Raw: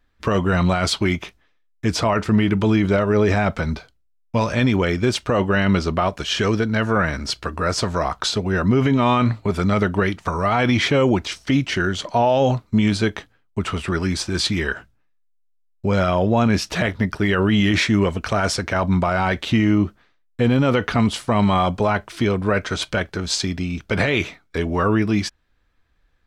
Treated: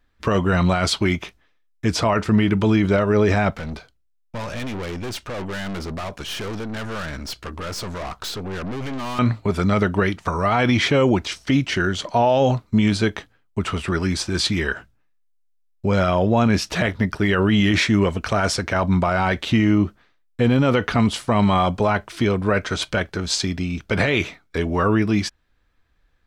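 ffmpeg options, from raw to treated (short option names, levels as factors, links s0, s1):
-filter_complex "[0:a]asettb=1/sr,asplit=3[s0][s1][s2];[s0]atrim=end=3.504[s3];[s1]atrim=start=3.5:end=9.19,asetpts=PTS-STARTPTS,afade=t=in:d=0.004:c=qsin,afade=t=out:st=5.686:d=0.004:c=qsin,aeval=exprs='(tanh(22.4*val(0)+0.45)-tanh(0.45))/22.4':c=same[s4];[s2]atrim=start=9.186[s5];[s3][s4]acrossfade=d=0.004:c1=hsin:c2=qsin[s6];[s6][s5]acrossfade=d=0.004:c1=qsin:c2=hsin"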